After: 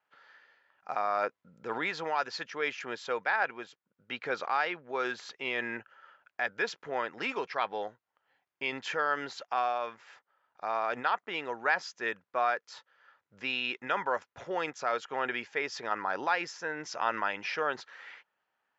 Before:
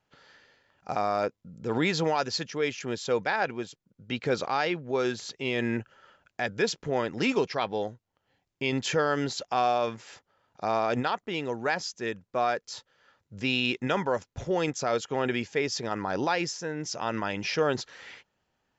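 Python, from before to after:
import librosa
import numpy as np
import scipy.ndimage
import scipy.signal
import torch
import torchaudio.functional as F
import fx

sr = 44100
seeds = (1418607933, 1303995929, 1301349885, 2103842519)

y = fx.rider(x, sr, range_db=10, speed_s=0.5)
y = fx.bandpass_q(y, sr, hz=1400.0, q=1.1)
y = y * 10.0 ** (2.5 / 20.0)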